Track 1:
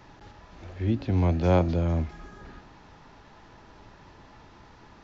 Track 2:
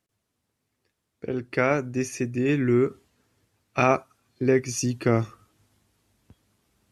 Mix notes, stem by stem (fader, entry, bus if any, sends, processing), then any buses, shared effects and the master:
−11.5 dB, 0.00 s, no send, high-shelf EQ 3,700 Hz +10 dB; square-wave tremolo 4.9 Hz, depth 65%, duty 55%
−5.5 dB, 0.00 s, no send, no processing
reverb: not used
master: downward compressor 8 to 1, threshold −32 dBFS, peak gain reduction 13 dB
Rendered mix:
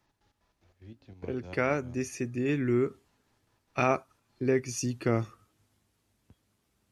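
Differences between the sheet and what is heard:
stem 1 −11.5 dB → −23.0 dB
master: missing downward compressor 8 to 1, threshold −32 dBFS, peak gain reduction 13 dB

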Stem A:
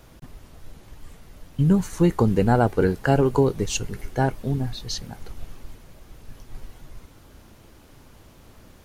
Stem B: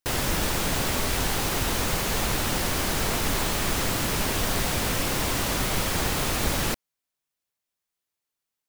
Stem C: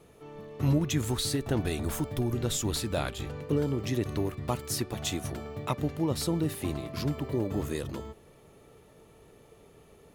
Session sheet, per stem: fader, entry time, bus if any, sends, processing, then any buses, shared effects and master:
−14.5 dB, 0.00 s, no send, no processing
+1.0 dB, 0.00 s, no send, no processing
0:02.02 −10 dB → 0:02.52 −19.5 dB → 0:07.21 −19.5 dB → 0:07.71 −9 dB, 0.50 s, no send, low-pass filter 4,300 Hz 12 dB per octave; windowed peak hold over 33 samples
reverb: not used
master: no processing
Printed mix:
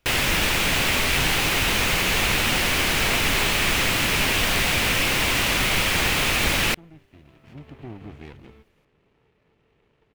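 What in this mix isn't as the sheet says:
stem A −14.5 dB → −21.5 dB
master: extra parametric band 2,500 Hz +11.5 dB 1.2 octaves

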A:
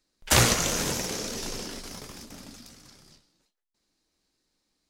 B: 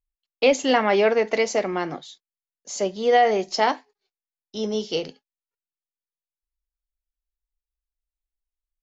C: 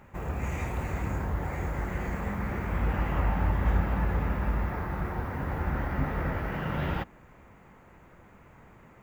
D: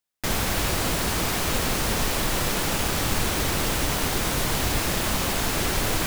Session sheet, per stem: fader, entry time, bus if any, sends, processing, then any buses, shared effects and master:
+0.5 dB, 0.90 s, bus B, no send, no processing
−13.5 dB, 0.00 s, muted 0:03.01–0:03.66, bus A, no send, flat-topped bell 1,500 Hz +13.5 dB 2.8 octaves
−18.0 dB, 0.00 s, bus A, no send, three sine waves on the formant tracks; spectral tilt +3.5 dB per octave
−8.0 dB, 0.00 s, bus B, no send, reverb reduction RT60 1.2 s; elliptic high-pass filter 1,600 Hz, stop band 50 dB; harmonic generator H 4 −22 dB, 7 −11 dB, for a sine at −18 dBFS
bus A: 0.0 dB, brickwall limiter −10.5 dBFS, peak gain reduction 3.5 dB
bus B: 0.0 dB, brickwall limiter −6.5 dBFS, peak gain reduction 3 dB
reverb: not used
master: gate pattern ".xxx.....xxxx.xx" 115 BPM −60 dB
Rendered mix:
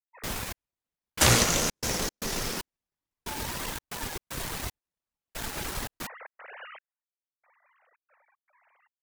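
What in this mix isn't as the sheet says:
stem B: muted
stem D: missing elliptic high-pass filter 1,600 Hz, stop band 50 dB

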